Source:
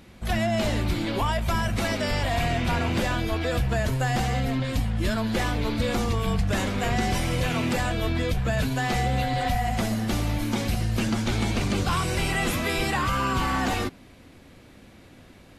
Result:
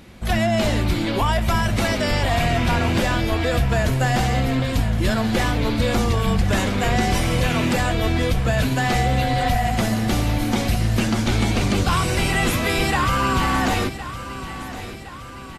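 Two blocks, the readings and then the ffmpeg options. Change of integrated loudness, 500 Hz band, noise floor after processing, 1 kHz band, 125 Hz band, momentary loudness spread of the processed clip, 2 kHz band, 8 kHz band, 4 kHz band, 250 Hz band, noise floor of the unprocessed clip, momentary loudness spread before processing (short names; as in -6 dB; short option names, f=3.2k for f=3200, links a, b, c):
+5.5 dB, +5.0 dB, -35 dBFS, +5.5 dB, +5.5 dB, 4 LU, +5.5 dB, +5.5 dB, +5.5 dB, +5.0 dB, -50 dBFS, 2 LU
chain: -af "aecho=1:1:1064|2128|3192|4256|5320:0.224|0.119|0.0629|0.0333|0.0177,volume=5dB"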